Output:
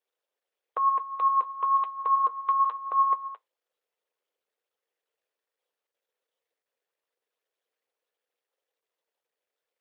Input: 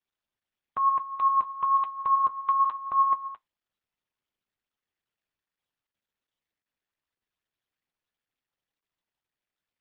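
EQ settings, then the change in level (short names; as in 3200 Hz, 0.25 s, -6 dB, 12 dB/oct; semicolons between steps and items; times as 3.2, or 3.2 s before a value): dynamic EQ 630 Hz, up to -5 dB, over -39 dBFS, Q 1; resonant high-pass 480 Hz, resonance Q 5.1; 0.0 dB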